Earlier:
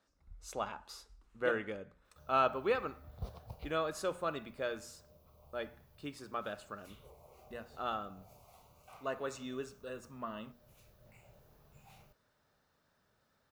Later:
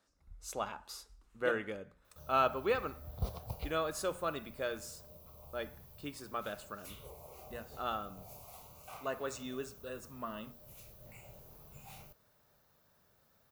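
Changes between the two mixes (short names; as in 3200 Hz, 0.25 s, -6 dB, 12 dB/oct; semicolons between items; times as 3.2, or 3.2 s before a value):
background +6.0 dB; master: add high shelf 8200 Hz +10.5 dB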